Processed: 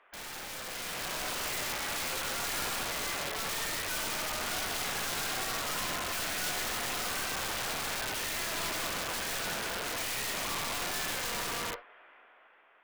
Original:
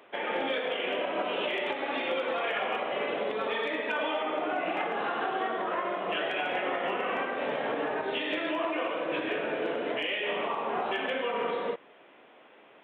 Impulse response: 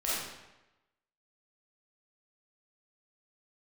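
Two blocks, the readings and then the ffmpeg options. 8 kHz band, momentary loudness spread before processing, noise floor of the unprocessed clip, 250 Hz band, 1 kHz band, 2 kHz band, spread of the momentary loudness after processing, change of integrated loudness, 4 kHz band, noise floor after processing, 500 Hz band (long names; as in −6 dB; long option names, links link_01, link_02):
can't be measured, 2 LU, −56 dBFS, −8.5 dB, −6.0 dB, −2.5 dB, 3 LU, −2.0 dB, +2.5 dB, −60 dBFS, −12.0 dB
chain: -filter_complex "[0:a]bandpass=frequency=1500:width_type=q:width=1.5:csg=0,aeval=exprs='0.0708*(cos(1*acos(clip(val(0)/0.0708,-1,1)))-cos(1*PI/2))+0.00158*(cos(5*acos(clip(val(0)/0.0708,-1,1)))-cos(5*PI/2))+0.0112*(cos(6*acos(clip(val(0)/0.0708,-1,1)))-cos(6*PI/2))':channel_layout=same,asplit=2[link_01][link_02];[1:a]atrim=start_sample=2205,atrim=end_sample=3528,asetrate=48510,aresample=44100[link_03];[link_02][link_03]afir=irnorm=-1:irlink=0,volume=-12dB[link_04];[link_01][link_04]amix=inputs=2:normalize=0,aeval=exprs='(mod(37.6*val(0)+1,2)-1)/37.6':channel_layout=same,dynaudnorm=framelen=160:gausssize=11:maxgain=8dB,volume=-4.5dB"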